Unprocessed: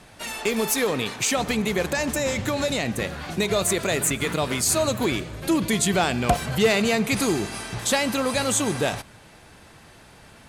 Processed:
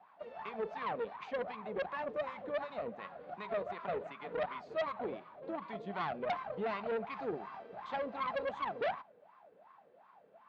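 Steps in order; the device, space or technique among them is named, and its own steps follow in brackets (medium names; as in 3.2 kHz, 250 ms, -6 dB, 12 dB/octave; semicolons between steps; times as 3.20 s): wah-wah guitar rig (wah-wah 2.7 Hz 470–1100 Hz, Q 14; valve stage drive 37 dB, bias 0.55; cabinet simulation 100–4200 Hz, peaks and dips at 110 Hz -7 dB, 190 Hz +6 dB, 340 Hz -4 dB, 510 Hz -4 dB, 900 Hz -4 dB); trim +8.5 dB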